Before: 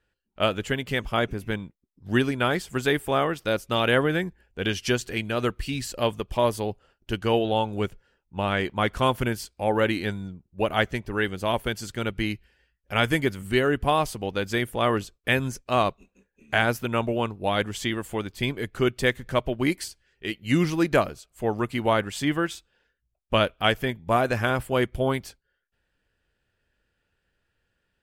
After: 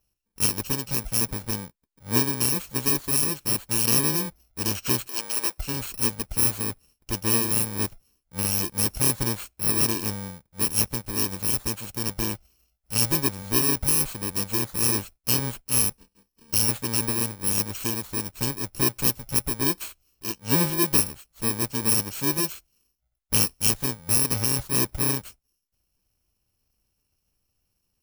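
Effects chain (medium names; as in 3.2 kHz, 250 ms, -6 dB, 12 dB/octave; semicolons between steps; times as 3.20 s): bit-reversed sample order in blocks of 64 samples; 5.07–5.58 s: high-pass 480 Hz 12 dB/octave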